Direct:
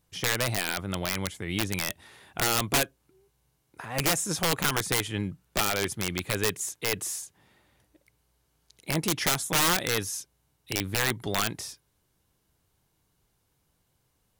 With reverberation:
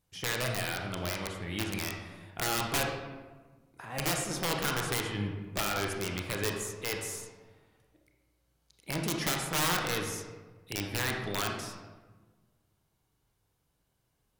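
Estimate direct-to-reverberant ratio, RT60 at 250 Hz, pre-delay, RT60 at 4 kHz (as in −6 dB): 1.0 dB, 1.6 s, 27 ms, 0.75 s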